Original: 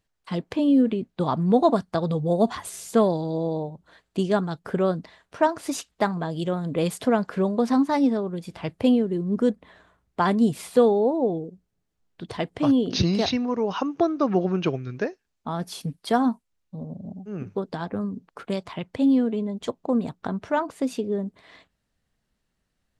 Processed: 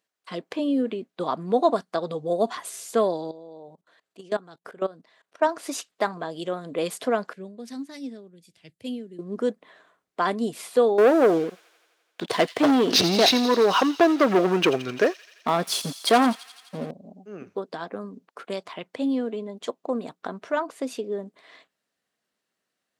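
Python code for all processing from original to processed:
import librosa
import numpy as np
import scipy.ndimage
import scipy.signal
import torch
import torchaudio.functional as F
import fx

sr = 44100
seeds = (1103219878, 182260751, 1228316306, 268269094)

y = fx.chain(x, sr, fx.peak_eq(hz=81.0, db=3.0, octaves=1.1),
    fx.level_steps(step_db=20), at=(3.31, 5.42))
y = fx.chain(y, sr, fx.curve_eq(hz=(120.0, 1100.0, 1800.0, 8500.0), db=(0, -24, -11, -3)),
    fx.band_widen(depth_pct=70), at=(7.33, 9.19))
y = fx.chain(y, sr, fx.leveller(passes=3),
    fx.echo_wet_highpass(ms=85, feedback_pct=73, hz=3100.0, wet_db=-11.0), at=(10.98, 16.91))
y = scipy.signal.sosfilt(scipy.signal.butter(2, 350.0, 'highpass', fs=sr, output='sos'), y)
y = fx.notch(y, sr, hz=870.0, q=12.0)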